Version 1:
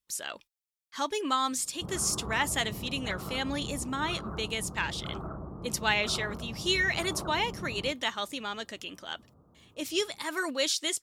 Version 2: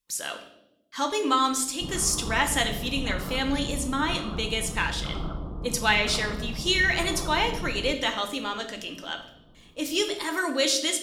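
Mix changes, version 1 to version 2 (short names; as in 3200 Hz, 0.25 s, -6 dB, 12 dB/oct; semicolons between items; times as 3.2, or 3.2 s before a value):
background: remove HPF 80 Hz 12 dB/oct; reverb: on, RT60 0.85 s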